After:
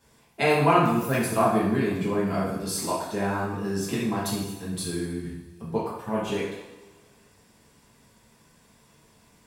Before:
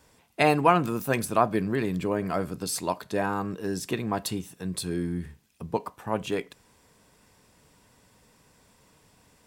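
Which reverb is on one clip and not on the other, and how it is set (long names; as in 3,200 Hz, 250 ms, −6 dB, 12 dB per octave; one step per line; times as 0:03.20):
coupled-rooms reverb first 0.81 s, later 2.2 s, from −18 dB, DRR −8 dB
level −7 dB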